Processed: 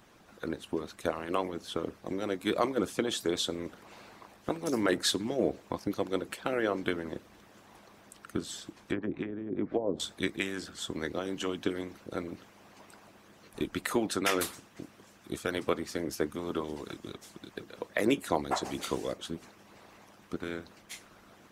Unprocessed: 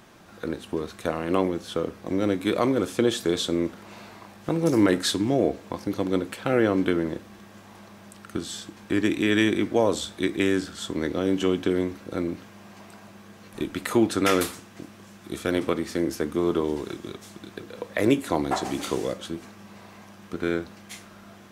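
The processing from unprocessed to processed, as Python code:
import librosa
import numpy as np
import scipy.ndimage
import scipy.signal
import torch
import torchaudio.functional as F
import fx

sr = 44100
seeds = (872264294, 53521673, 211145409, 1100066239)

y = fx.env_lowpass_down(x, sr, base_hz=480.0, full_db=-17.5, at=(8.71, 10.0))
y = fx.hpss(y, sr, part='harmonic', gain_db=-17)
y = F.gain(torch.from_numpy(y), -2.0).numpy()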